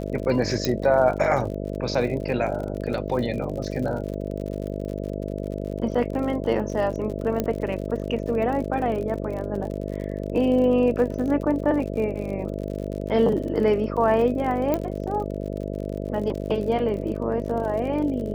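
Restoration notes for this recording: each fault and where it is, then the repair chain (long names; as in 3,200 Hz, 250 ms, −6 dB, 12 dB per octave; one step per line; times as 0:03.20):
mains buzz 50 Hz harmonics 13 −30 dBFS
surface crackle 57 per second −32 dBFS
0:00.65: click −9 dBFS
0:07.40: click −11 dBFS
0:14.74: click −11 dBFS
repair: click removal
hum removal 50 Hz, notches 13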